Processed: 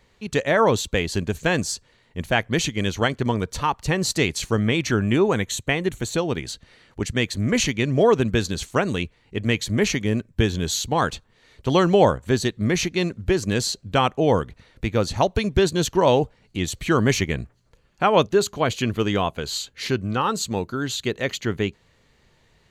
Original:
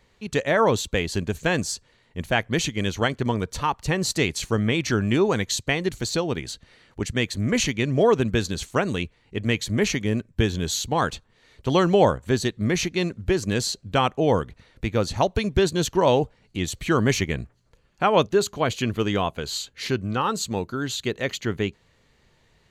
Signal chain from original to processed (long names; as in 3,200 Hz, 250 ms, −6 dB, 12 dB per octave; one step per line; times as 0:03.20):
0:04.88–0:06.18: parametric band 4,900 Hz −14.5 dB 0.36 octaves
level +1.5 dB